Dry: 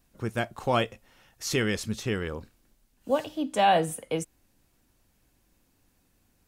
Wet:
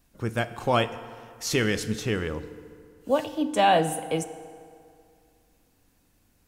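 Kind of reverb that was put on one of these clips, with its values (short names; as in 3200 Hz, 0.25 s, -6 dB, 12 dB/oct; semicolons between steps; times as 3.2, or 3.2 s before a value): FDN reverb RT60 2.3 s, low-frequency decay 1×, high-frequency decay 0.65×, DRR 12 dB; gain +2 dB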